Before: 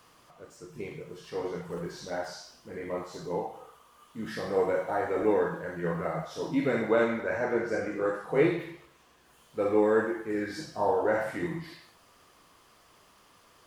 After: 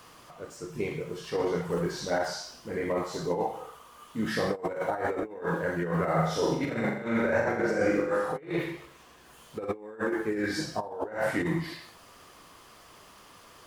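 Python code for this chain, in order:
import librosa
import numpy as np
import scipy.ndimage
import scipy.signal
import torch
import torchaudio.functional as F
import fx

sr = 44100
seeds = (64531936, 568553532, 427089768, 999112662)

y = fx.over_compress(x, sr, threshold_db=-32.0, ratio=-0.5)
y = fx.room_flutter(y, sr, wall_m=7.4, rt60_s=0.62, at=(6.15, 8.36), fade=0.02)
y = y * 10.0 ** (3.0 / 20.0)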